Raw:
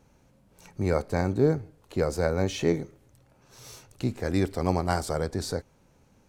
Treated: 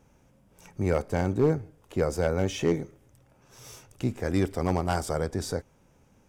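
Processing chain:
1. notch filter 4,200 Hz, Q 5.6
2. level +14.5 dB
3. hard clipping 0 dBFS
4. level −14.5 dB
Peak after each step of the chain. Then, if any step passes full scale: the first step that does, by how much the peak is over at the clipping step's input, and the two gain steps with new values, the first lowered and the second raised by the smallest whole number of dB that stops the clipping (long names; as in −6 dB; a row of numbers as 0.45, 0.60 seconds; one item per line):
−9.0, +5.5, 0.0, −14.5 dBFS
step 2, 5.5 dB
step 2 +8.5 dB, step 4 −8.5 dB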